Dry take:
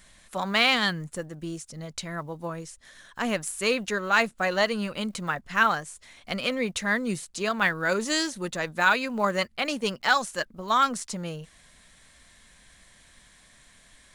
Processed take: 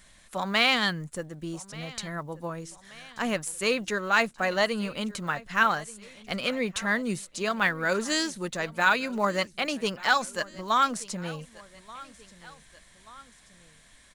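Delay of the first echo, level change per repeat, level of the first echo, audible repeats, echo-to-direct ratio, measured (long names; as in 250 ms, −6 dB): 1,182 ms, −5.0 dB, −20.5 dB, 2, −19.5 dB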